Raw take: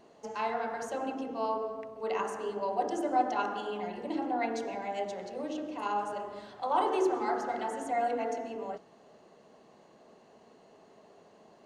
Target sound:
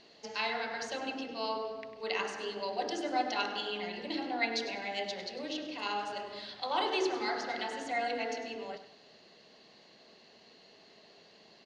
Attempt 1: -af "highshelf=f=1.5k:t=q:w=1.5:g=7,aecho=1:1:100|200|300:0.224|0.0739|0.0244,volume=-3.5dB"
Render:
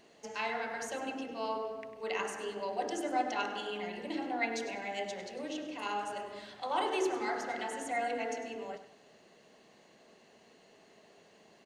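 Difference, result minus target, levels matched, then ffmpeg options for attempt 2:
4000 Hz band -5.5 dB
-af "lowpass=f=4.5k:t=q:w=3.5,highshelf=f=1.5k:t=q:w=1.5:g=7,aecho=1:1:100|200|300:0.224|0.0739|0.0244,volume=-3.5dB"

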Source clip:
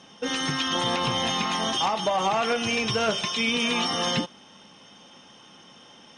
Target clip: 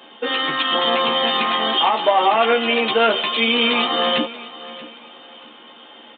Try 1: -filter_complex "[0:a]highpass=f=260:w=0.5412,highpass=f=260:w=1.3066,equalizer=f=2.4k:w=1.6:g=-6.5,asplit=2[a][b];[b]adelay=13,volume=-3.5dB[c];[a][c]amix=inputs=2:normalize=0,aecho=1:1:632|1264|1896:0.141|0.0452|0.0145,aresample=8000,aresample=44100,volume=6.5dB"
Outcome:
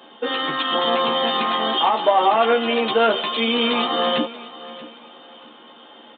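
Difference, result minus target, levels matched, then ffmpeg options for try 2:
2000 Hz band -2.5 dB
-filter_complex "[0:a]highpass=f=260:w=0.5412,highpass=f=260:w=1.3066,asplit=2[a][b];[b]adelay=13,volume=-3.5dB[c];[a][c]amix=inputs=2:normalize=0,aecho=1:1:632|1264|1896:0.141|0.0452|0.0145,aresample=8000,aresample=44100,volume=6.5dB"

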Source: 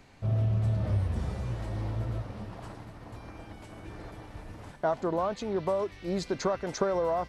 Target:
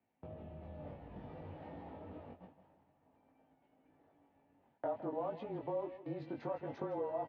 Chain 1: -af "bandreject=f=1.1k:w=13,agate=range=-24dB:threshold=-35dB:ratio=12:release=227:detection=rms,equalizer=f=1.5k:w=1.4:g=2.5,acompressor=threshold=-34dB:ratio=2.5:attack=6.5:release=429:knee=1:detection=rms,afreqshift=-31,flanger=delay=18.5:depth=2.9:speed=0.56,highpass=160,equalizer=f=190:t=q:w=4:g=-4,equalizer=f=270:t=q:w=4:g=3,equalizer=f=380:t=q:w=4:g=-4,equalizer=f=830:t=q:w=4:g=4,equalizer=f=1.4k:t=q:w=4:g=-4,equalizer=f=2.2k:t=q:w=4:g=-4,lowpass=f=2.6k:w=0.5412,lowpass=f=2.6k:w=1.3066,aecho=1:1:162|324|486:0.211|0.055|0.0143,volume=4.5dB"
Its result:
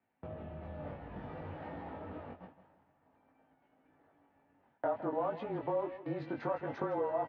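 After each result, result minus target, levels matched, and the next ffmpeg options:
2000 Hz band +5.0 dB; compressor: peak gain reduction -4 dB
-af "bandreject=f=1.1k:w=13,agate=range=-24dB:threshold=-35dB:ratio=12:release=227:detection=rms,equalizer=f=1.5k:w=1.4:g=-5.5,acompressor=threshold=-34dB:ratio=2.5:attack=6.5:release=429:knee=1:detection=rms,afreqshift=-31,flanger=delay=18.5:depth=2.9:speed=0.56,highpass=160,equalizer=f=190:t=q:w=4:g=-4,equalizer=f=270:t=q:w=4:g=3,equalizer=f=380:t=q:w=4:g=-4,equalizer=f=830:t=q:w=4:g=4,equalizer=f=1.4k:t=q:w=4:g=-4,equalizer=f=2.2k:t=q:w=4:g=-4,lowpass=f=2.6k:w=0.5412,lowpass=f=2.6k:w=1.3066,aecho=1:1:162|324|486:0.211|0.055|0.0143,volume=4.5dB"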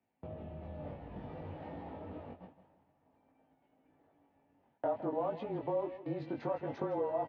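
compressor: peak gain reduction -4 dB
-af "bandreject=f=1.1k:w=13,agate=range=-24dB:threshold=-35dB:ratio=12:release=227:detection=rms,equalizer=f=1.5k:w=1.4:g=-5.5,acompressor=threshold=-41dB:ratio=2.5:attack=6.5:release=429:knee=1:detection=rms,afreqshift=-31,flanger=delay=18.5:depth=2.9:speed=0.56,highpass=160,equalizer=f=190:t=q:w=4:g=-4,equalizer=f=270:t=q:w=4:g=3,equalizer=f=380:t=q:w=4:g=-4,equalizer=f=830:t=q:w=4:g=4,equalizer=f=1.4k:t=q:w=4:g=-4,equalizer=f=2.2k:t=q:w=4:g=-4,lowpass=f=2.6k:w=0.5412,lowpass=f=2.6k:w=1.3066,aecho=1:1:162|324|486:0.211|0.055|0.0143,volume=4.5dB"

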